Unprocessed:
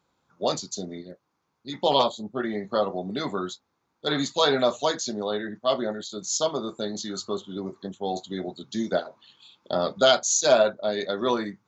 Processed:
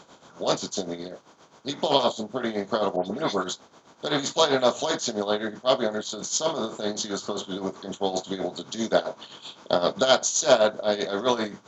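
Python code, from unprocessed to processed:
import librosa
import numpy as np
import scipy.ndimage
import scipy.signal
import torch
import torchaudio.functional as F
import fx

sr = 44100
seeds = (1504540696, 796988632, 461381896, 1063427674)

y = fx.bin_compress(x, sr, power=0.6)
y = y * (1.0 - 0.72 / 2.0 + 0.72 / 2.0 * np.cos(2.0 * np.pi * 7.7 * (np.arange(len(y)) / sr)))
y = fx.dispersion(y, sr, late='highs', ms=106.0, hz=2600.0, at=(2.96, 3.44))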